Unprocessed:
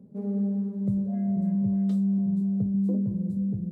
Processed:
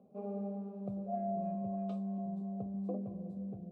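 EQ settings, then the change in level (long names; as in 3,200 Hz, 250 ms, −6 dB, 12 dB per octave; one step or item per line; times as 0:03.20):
formant filter a
parametric band 78 Hz +14.5 dB 0.21 octaves
+11.5 dB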